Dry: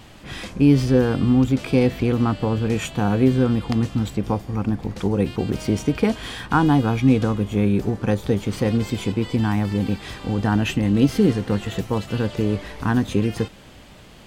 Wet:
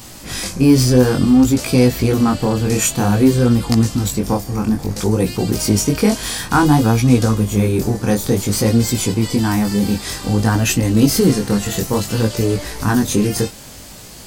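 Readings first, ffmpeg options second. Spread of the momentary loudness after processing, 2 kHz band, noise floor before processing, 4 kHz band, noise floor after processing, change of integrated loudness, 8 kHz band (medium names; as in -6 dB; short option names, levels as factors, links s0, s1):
7 LU, +5.0 dB, -45 dBFS, +9.0 dB, -37 dBFS, +5.0 dB, +18.5 dB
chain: -filter_complex "[0:a]flanger=delay=16.5:depth=7.9:speed=0.56,aexciter=amount=5.6:drive=3:freq=4500,asplit=2[s0][s1];[s1]asoftclip=type=tanh:threshold=0.0944,volume=0.447[s2];[s0][s2]amix=inputs=2:normalize=0,volume=1.88"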